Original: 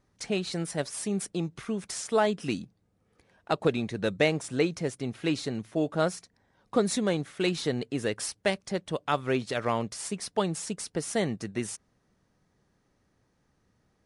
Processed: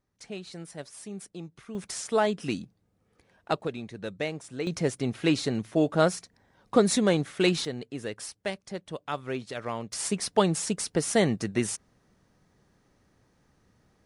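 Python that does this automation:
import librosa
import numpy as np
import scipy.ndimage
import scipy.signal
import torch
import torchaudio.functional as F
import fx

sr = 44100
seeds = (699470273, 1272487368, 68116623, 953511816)

y = fx.gain(x, sr, db=fx.steps((0.0, -9.5), (1.75, 0.0), (3.61, -7.5), (4.67, 4.0), (7.65, -5.5), (9.93, 5.0)))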